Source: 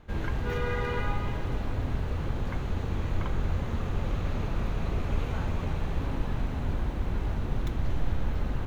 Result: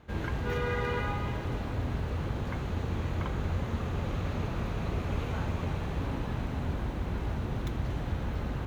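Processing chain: HPF 56 Hz

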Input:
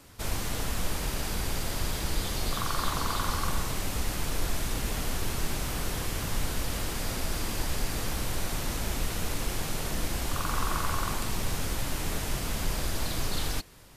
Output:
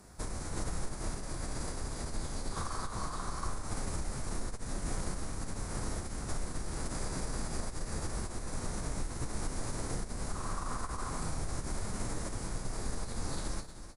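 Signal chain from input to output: random-step tremolo; doubler 30 ms -9 dB; feedback echo 0.31 s, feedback 41%, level -16 dB; compressor 6:1, threshold -30 dBFS, peak gain reduction 9 dB; formant-preserving pitch shift -6 st; bell 3000 Hz -14.5 dB 0.86 oct; gain +1 dB

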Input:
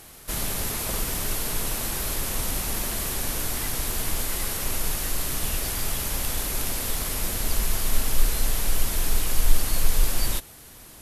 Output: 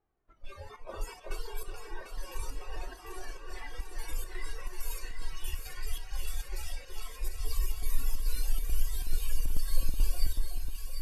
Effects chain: spectral noise reduction 25 dB; chopper 2.3 Hz, depth 65%, duty 75%; in parallel at -0.5 dB: compressor, threshold -27 dBFS, peak gain reduction 14.5 dB; on the sum: flange 0.67 Hz, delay 2.4 ms, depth 1.3 ms, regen +35%; low-pass opened by the level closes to 1200 Hz, open at -18.5 dBFS; on a send: echo with dull and thin repeats by turns 0.373 s, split 1400 Hz, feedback 78%, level -4 dB; on the sum: gain -6.5 dB

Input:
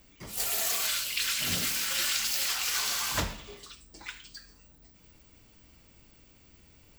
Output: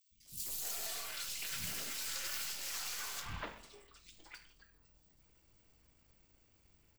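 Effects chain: half-wave gain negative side -7 dB; three bands offset in time highs, lows, mids 0.11/0.25 s, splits 230/3200 Hz; gain -8 dB

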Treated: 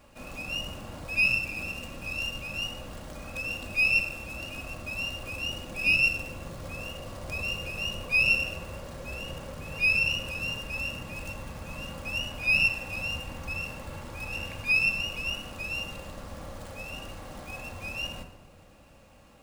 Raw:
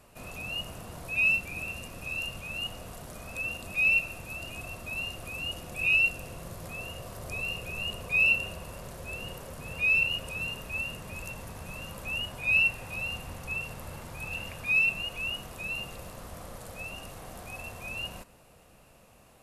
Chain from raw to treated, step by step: shoebox room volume 3700 m³, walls furnished, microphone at 2.3 m; running maximum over 3 samples

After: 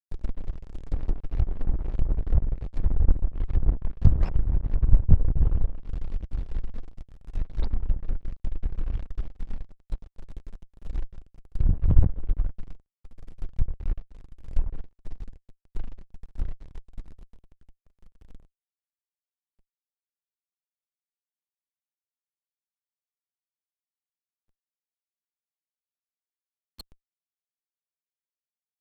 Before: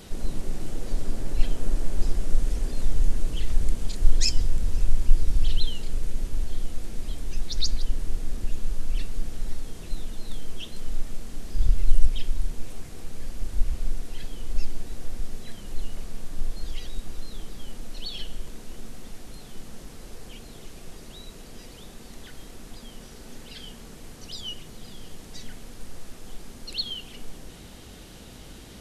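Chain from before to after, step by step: backlash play -17.5 dBFS; added harmonics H 2 -10 dB, 6 -16 dB, 7 -13 dB, 8 -8 dB, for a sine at -3 dBFS; treble ducked by the level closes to 1100 Hz, closed at -15 dBFS; gain -2 dB

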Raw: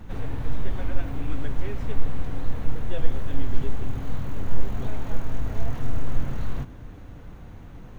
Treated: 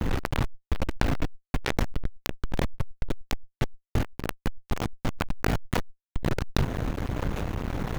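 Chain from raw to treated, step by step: fuzz box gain 38 dB, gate -42 dBFS; backwards sustainer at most 41 dB/s; gain -7.5 dB

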